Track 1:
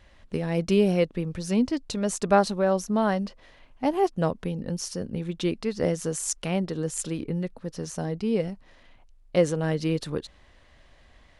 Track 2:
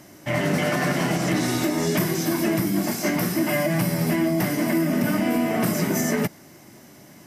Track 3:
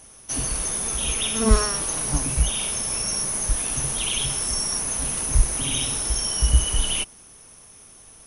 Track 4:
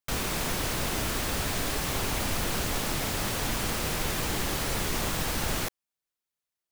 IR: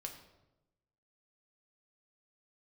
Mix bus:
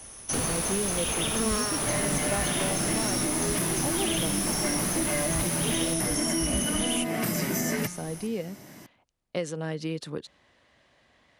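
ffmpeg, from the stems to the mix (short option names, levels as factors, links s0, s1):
-filter_complex "[0:a]highpass=130,volume=0.708[s0];[1:a]bandreject=f=177.3:t=h:w=4,bandreject=f=354.6:t=h:w=4,bandreject=f=531.9:t=h:w=4,bandreject=f=709.2:t=h:w=4,bandreject=f=886.5:t=h:w=4,bandreject=f=1063.8:t=h:w=4,bandreject=f=1241.1:t=h:w=4,bandreject=f=1418.4:t=h:w=4,bandreject=f=1595.7:t=h:w=4,bandreject=f=1773:t=h:w=4,bandreject=f=1950.3:t=h:w=4,bandreject=f=2127.6:t=h:w=4,bandreject=f=2304.9:t=h:w=4,bandreject=f=2482.2:t=h:w=4,bandreject=f=2659.5:t=h:w=4,bandreject=f=2836.8:t=h:w=4,bandreject=f=3014.1:t=h:w=4,bandreject=f=3191.4:t=h:w=4,bandreject=f=3368.7:t=h:w=4,bandreject=f=3546:t=h:w=4,bandreject=f=3723.3:t=h:w=4,bandreject=f=3900.6:t=h:w=4,bandreject=f=4077.9:t=h:w=4,bandreject=f=4255.2:t=h:w=4,bandreject=f=4432.5:t=h:w=4,bandreject=f=4609.8:t=h:w=4,bandreject=f=4787.1:t=h:w=4,bandreject=f=4964.4:t=h:w=4,bandreject=f=5141.7:t=h:w=4,bandreject=f=5319:t=h:w=4,bandreject=f=5496.3:t=h:w=4,bandreject=f=5673.6:t=h:w=4,bandreject=f=5850.9:t=h:w=4,bandreject=f=6028.2:t=h:w=4,adelay=1600,volume=1[s1];[2:a]volume=1.33[s2];[3:a]adelay=250,volume=1.19[s3];[s0][s1][s2][s3]amix=inputs=4:normalize=0,acrossover=split=97|1700[s4][s5][s6];[s4]acompressor=threshold=0.00794:ratio=4[s7];[s5]acompressor=threshold=0.0398:ratio=4[s8];[s6]acompressor=threshold=0.0355:ratio=4[s9];[s7][s8][s9]amix=inputs=3:normalize=0"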